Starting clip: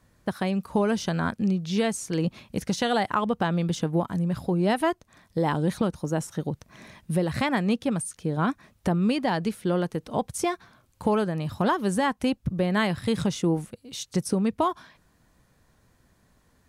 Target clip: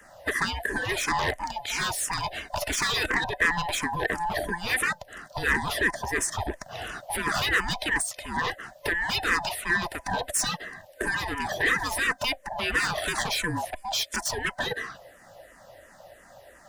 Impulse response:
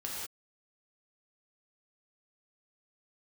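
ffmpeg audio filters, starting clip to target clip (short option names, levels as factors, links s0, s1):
-filter_complex "[0:a]afftfilt=real='real(if(lt(b,1008),b+24*(1-2*mod(floor(b/24),2)),b),0)':imag='imag(if(lt(b,1008),b+24*(1-2*mod(floor(b/24),2)),b),0)':win_size=2048:overlap=0.75,lowshelf=f=260:g=3,afftfilt=real='re*lt(hypot(re,im),0.141)':imag='im*lt(hypot(re,im),0.141)':win_size=1024:overlap=0.75,asplit=2[s0][s1];[s1]aeval=exprs='0.133*sin(PI/2*5.01*val(0)/0.133)':c=same,volume=0.316[s2];[s0][s2]amix=inputs=2:normalize=0,equalizer=f=1800:t=o:w=0.25:g=10,asplit=2[s3][s4];[s4]afreqshift=-2.9[s5];[s3][s5]amix=inputs=2:normalize=1,volume=1.41"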